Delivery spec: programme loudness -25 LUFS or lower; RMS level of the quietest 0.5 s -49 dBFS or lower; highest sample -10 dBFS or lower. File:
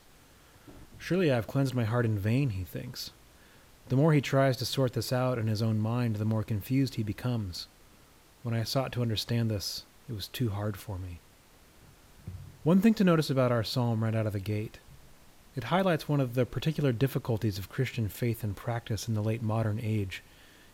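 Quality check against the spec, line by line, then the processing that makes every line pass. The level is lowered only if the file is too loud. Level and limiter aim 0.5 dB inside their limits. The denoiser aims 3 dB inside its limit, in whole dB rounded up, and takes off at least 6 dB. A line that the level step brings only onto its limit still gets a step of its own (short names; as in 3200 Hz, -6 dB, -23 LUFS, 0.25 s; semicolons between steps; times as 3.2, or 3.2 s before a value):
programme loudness -30.0 LUFS: OK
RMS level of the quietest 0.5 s -58 dBFS: OK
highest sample -11.5 dBFS: OK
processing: none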